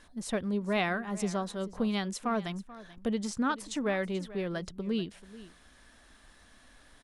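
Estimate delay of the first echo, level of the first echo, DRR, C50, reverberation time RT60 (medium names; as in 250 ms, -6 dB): 435 ms, -17.5 dB, no reverb, no reverb, no reverb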